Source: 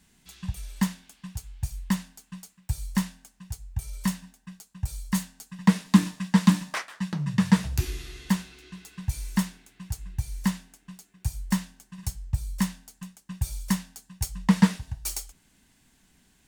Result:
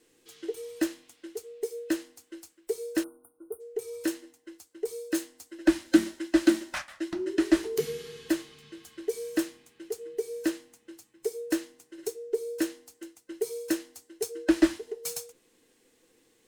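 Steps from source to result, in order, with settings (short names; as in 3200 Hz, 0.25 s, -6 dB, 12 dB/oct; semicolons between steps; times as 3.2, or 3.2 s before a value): band inversion scrambler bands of 500 Hz; spectral delete 3.04–3.61, 1500–8700 Hz; gain -3 dB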